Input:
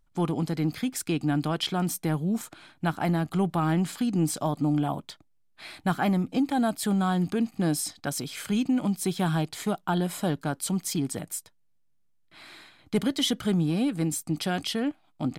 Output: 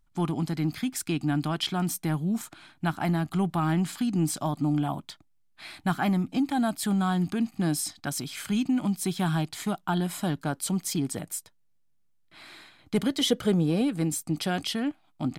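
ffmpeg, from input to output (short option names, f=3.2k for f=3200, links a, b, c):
-af "asetnsamples=n=441:p=0,asendcmd='10.44 equalizer g -1;13.21 equalizer g 10;13.81 equalizer g 0;14.74 equalizer g -6.5',equalizer=f=490:t=o:w=0.47:g=-10"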